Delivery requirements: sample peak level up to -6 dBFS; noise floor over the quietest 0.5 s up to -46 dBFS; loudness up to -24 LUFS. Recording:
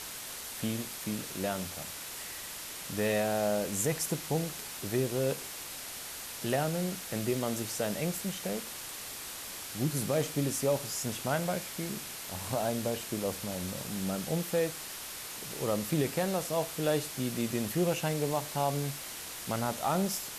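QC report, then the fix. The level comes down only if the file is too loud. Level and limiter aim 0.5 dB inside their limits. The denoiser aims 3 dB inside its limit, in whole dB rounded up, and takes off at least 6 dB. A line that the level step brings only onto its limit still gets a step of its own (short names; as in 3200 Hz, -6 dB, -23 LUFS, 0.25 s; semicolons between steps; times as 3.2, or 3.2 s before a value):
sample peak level -17.0 dBFS: OK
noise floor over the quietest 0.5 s -42 dBFS: fail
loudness -33.0 LUFS: OK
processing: denoiser 7 dB, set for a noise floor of -42 dBFS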